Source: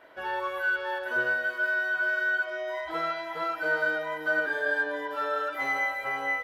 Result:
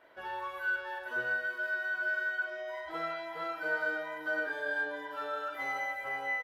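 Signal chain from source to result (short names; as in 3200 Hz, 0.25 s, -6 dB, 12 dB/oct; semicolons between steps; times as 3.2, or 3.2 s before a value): doubler 42 ms -7 dB; gain -7 dB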